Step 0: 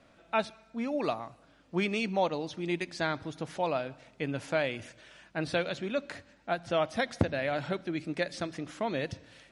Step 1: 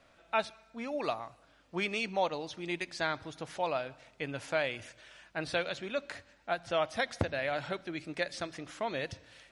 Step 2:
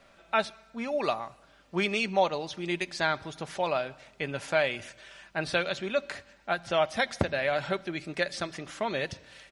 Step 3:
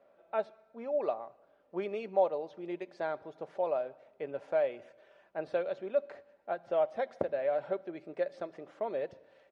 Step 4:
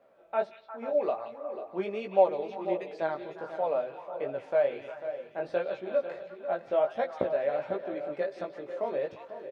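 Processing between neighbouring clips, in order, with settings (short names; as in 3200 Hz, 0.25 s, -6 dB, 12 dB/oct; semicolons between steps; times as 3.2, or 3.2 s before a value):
bell 210 Hz -8 dB 2.1 oct
comb 5.1 ms, depth 33%; gain +4.5 dB
band-pass 520 Hz, Q 2
delay with a stepping band-pass 0.177 s, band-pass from 3100 Hz, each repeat -1.4 oct, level -5 dB; chorus 1.4 Hz, delay 15 ms, depth 6.4 ms; echo 0.493 s -12 dB; gain +6 dB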